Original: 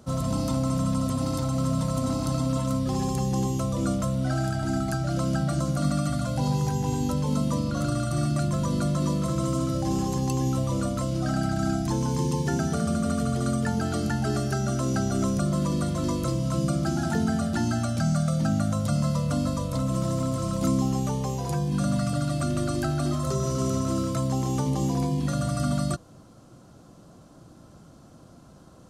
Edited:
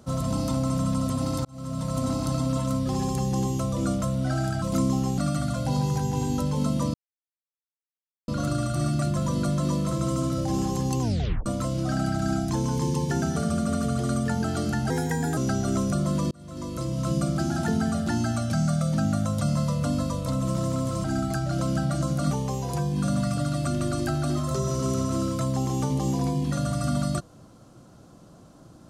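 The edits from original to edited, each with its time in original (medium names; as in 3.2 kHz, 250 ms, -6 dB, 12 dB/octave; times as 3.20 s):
1.45–2.00 s: fade in
4.62–5.89 s: swap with 20.51–21.07 s
7.65 s: insert silence 1.34 s
10.38 s: tape stop 0.45 s
14.27–14.84 s: speed 121%
15.78–16.55 s: fade in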